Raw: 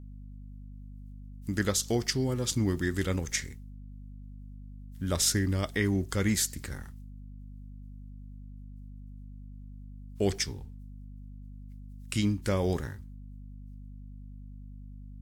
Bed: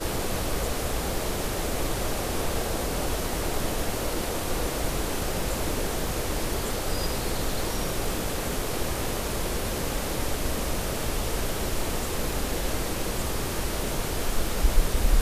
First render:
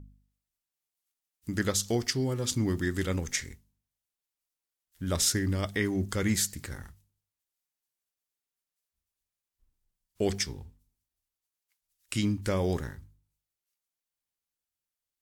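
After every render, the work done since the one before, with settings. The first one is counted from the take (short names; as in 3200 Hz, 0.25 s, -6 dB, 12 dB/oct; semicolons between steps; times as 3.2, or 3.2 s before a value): de-hum 50 Hz, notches 5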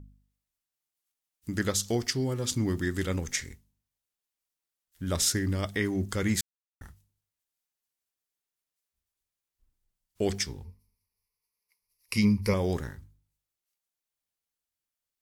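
6.41–6.81 mute; 10.64–12.54 ripple EQ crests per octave 0.86, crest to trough 15 dB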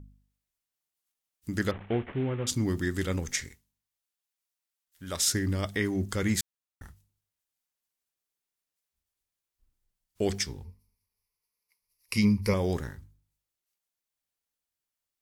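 1.71–2.47 CVSD 16 kbps; 3.48–5.28 low shelf 470 Hz -10.5 dB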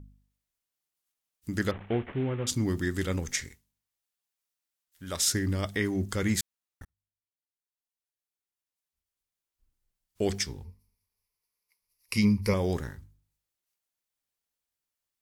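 6.85–10.25 fade in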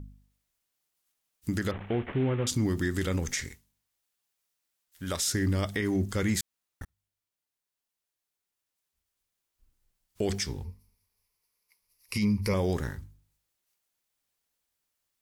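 in parallel at -0.5 dB: compressor, threshold -34 dBFS, peak gain reduction 14 dB; on the sum: limiter -19 dBFS, peak gain reduction 8.5 dB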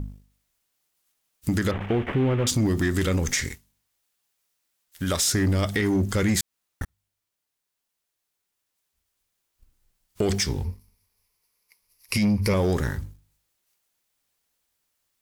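sample leveller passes 1; in parallel at +3 dB: compressor, threshold -33 dBFS, peak gain reduction 10.5 dB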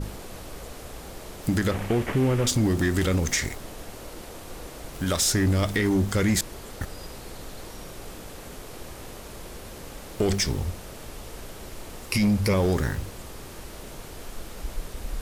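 add bed -11.5 dB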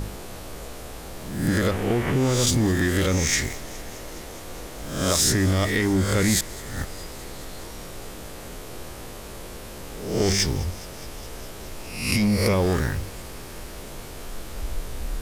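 spectral swells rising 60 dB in 0.73 s; thin delay 0.208 s, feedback 81%, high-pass 1600 Hz, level -20 dB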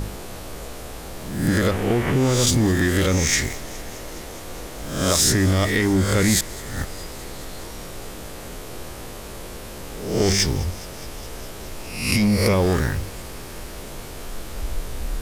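gain +2.5 dB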